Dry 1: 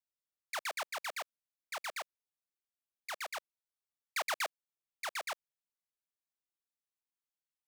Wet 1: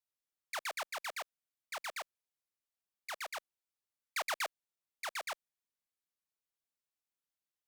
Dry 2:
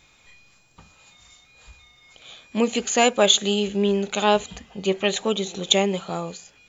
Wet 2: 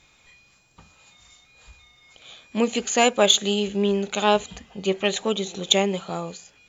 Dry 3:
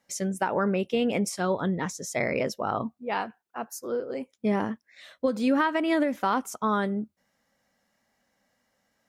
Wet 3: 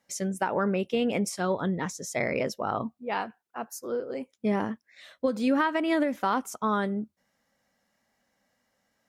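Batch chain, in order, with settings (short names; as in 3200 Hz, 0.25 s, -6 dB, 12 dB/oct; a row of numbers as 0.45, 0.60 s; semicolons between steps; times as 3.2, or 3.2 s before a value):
added harmonics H 7 -35 dB, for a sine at -1 dBFS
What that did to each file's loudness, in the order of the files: -1.0, -0.5, -1.0 LU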